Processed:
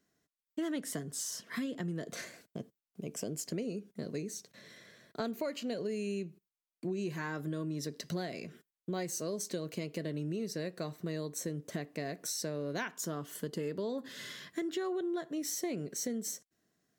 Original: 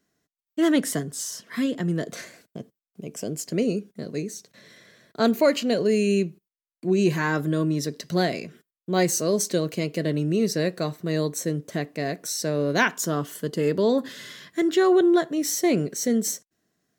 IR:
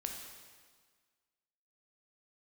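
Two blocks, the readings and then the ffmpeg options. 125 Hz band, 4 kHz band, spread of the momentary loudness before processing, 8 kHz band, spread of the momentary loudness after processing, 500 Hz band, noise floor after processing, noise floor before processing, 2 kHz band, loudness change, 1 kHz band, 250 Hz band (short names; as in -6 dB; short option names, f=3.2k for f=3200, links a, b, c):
-12.5 dB, -11.5 dB, 14 LU, -9.5 dB, 9 LU, -14.5 dB, under -85 dBFS, under -85 dBFS, -14.5 dB, -14.0 dB, -15.0 dB, -14.0 dB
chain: -af "acompressor=threshold=-30dB:ratio=6,volume=-4dB"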